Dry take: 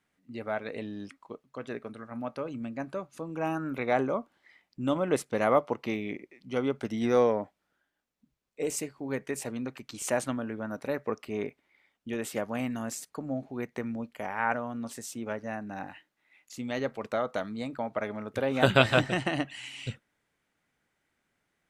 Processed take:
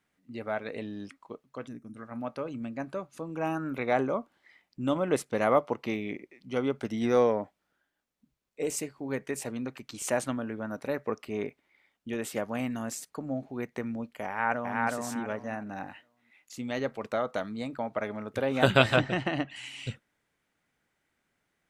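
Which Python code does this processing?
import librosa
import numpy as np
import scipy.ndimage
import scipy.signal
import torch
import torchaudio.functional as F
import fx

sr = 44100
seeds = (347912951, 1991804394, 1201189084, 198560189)

y = fx.spec_box(x, sr, start_s=1.68, length_s=0.29, low_hz=330.0, high_hz=5100.0, gain_db=-18)
y = fx.echo_throw(y, sr, start_s=14.27, length_s=0.55, ms=370, feedback_pct=25, wet_db=-1.0)
y = fx.air_absorb(y, sr, metres=110.0, at=(18.96, 19.56))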